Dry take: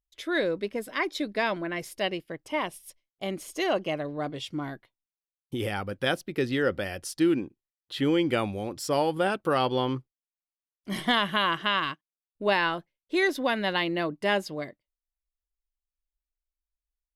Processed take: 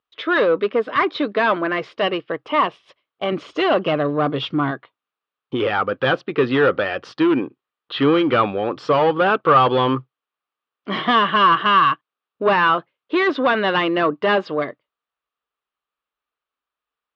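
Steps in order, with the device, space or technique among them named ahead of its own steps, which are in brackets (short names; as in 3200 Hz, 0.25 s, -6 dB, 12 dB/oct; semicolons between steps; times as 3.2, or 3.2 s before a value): 3.32–4.71 tone controls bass +8 dB, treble +5 dB; overdrive pedal into a guitar cabinet (overdrive pedal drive 21 dB, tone 5100 Hz, clips at -10 dBFS; speaker cabinet 91–3400 Hz, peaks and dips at 130 Hz +6 dB, 270 Hz +4 dB, 450 Hz +6 dB, 1200 Hz +10 dB, 2100 Hz -5 dB)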